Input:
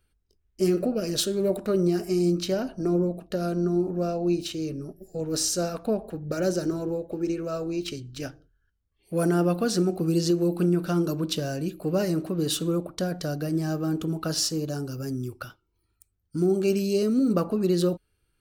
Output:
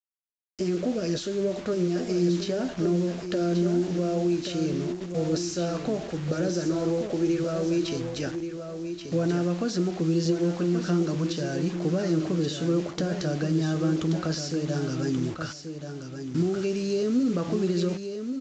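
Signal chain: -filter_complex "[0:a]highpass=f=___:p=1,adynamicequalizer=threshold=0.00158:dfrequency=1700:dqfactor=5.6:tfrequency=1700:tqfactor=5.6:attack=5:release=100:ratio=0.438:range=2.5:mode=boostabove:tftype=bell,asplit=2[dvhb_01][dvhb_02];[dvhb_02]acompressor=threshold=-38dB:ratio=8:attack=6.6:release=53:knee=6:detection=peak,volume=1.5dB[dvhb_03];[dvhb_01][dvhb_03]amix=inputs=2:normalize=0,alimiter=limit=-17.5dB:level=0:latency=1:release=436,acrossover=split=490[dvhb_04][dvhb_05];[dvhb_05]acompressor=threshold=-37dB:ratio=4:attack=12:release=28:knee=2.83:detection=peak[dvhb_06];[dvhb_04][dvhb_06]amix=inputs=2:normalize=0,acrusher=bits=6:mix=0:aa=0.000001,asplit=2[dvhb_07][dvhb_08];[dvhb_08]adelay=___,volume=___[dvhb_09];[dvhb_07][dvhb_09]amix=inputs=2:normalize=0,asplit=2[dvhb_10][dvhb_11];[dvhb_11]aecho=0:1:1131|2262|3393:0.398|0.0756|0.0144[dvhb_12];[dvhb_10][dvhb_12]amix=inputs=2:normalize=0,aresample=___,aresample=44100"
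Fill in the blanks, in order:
47, 12, -12dB, 16000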